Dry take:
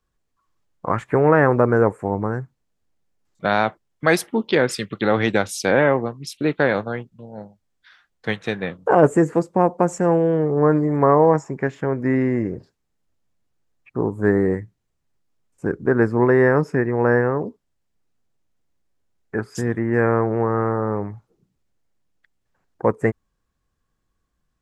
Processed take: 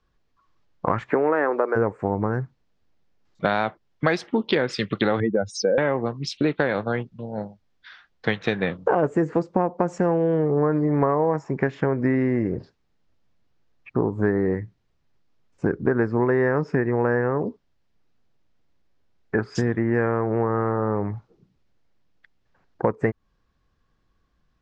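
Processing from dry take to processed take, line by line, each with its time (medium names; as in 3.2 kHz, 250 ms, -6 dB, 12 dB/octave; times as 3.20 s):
1.09–1.75 s: high-pass 180 Hz -> 400 Hz 24 dB/octave
5.20–5.78 s: spectral contrast enhancement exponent 2.7
whole clip: low-pass 5.4 kHz 24 dB/octave; compression 5:1, threshold -24 dBFS; trim +5.5 dB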